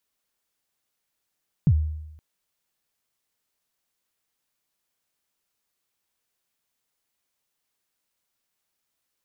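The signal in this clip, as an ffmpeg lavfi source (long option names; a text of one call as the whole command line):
ffmpeg -f lavfi -i "aevalsrc='0.251*pow(10,-3*t/0.91)*sin(2*PI*(180*0.06/log(77/180)*(exp(log(77/180)*min(t,0.06)/0.06)-1)+77*max(t-0.06,0)))':duration=0.52:sample_rate=44100" out.wav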